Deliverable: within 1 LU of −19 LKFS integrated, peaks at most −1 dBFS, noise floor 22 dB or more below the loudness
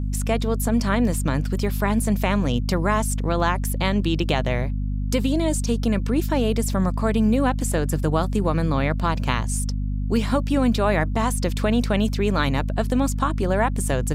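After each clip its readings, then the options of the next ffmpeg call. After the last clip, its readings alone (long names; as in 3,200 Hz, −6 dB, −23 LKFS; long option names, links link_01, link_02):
mains hum 50 Hz; hum harmonics up to 250 Hz; level of the hum −22 dBFS; integrated loudness −22.5 LKFS; sample peak −6.0 dBFS; target loudness −19.0 LKFS
→ -af "bandreject=frequency=50:width_type=h:width=6,bandreject=frequency=100:width_type=h:width=6,bandreject=frequency=150:width_type=h:width=6,bandreject=frequency=200:width_type=h:width=6,bandreject=frequency=250:width_type=h:width=6"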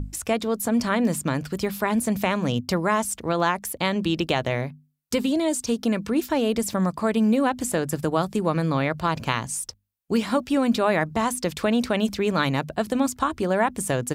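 mains hum none found; integrated loudness −24.0 LKFS; sample peak −6.5 dBFS; target loudness −19.0 LKFS
→ -af "volume=5dB"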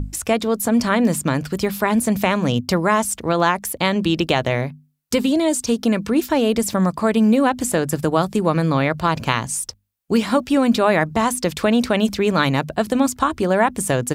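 integrated loudness −19.0 LKFS; sample peak −1.5 dBFS; background noise floor −50 dBFS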